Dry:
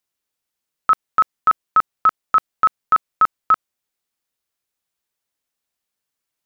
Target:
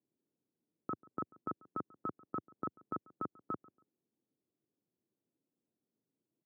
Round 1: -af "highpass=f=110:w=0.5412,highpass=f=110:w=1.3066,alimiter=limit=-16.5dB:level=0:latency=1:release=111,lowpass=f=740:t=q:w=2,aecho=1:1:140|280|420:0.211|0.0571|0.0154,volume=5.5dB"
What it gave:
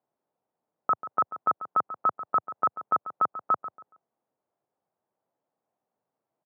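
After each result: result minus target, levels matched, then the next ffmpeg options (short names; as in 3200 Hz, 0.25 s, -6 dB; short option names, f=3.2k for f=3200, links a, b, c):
250 Hz band -19.5 dB; echo-to-direct +9.5 dB
-af "highpass=f=110:w=0.5412,highpass=f=110:w=1.3066,alimiter=limit=-16.5dB:level=0:latency=1:release=111,lowpass=f=320:t=q:w=2,aecho=1:1:140|280|420:0.211|0.0571|0.0154,volume=5.5dB"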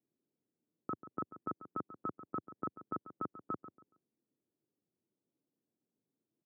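echo-to-direct +9.5 dB
-af "highpass=f=110:w=0.5412,highpass=f=110:w=1.3066,alimiter=limit=-16.5dB:level=0:latency=1:release=111,lowpass=f=320:t=q:w=2,aecho=1:1:140|280:0.0708|0.0191,volume=5.5dB"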